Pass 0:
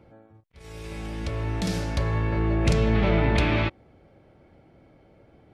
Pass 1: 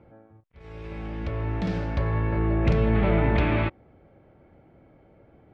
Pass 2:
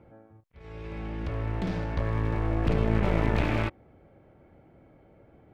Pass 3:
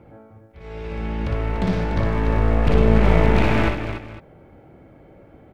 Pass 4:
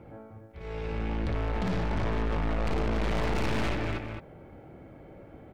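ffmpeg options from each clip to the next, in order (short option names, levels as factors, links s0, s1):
-af "lowpass=2300"
-af "aeval=exprs='clip(val(0),-1,0.0316)':c=same,volume=0.891"
-af "aecho=1:1:59|292|507:0.631|0.398|0.133,volume=2.24"
-af "aeval=exprs='(tanh(22.4*val(0)+0.35)-tanh(0.35))/22.4':c=same"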